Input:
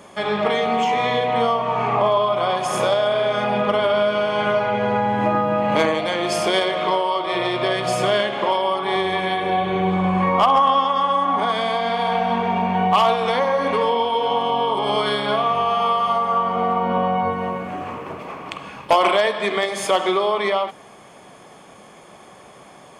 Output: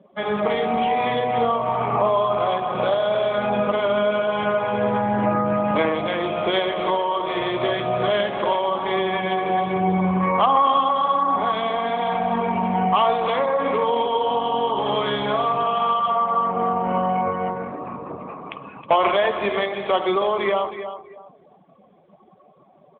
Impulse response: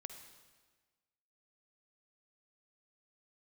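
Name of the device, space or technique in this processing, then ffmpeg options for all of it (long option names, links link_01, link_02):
mobile call with aggressive noise cancelling: -filter_complex "[0:a]asettb=1/sr,asplit=3[link_01][link_02][link_03];[link_01]atrim=end=4.434[link_04];[link_02]atrim=start=4.43:end=5.45,asetpts=PTS-STARTPTS,afade=type=in:duration=0.004:curve=qsin,afade=type=out:start_time=1.016:duration=0.004:curve=qsin,lowpass=8800[link_05];[link_03]atrim=start=5.446[link_06];[link_04][link_05]acrossfade=duration=0.004:curve1=hsin:curve2=qsin[link_07];[link_07][link_06]acrossfade=duration=0.004:curve1=qsin:curve2=hsin,highpass=110,lowshelf=frequency=130:gain=6,aecho=1:1:317|634|951:0.316|0.0917|0.0266,afftdn=noise_reduction=19:noise_floor=-35,volume=-1.5dB" -ar 8000 -c:a libopencore_amrnb -b:a 12200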